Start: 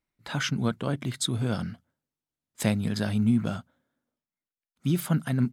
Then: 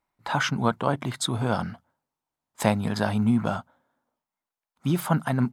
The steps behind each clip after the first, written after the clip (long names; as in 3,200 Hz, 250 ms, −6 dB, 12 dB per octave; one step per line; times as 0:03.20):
parametric band 900 Hz +14.5 dB 1.2 octaves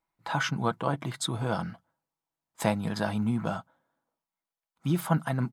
comb filter 6.1 ms, depth 36%
level −4.5 dB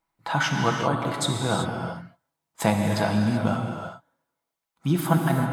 reverb whose tail is shaped and stops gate 410 ms flat, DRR 2 dB
level +4 dB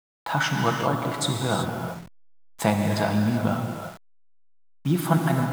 hold until the input has moved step −38.5 dBFS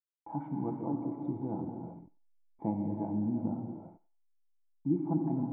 formant resonators in series u
feedback echo with a high-pass in the loop 93 ms, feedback 32%, high-pass 1,100 Hz, level −14 dB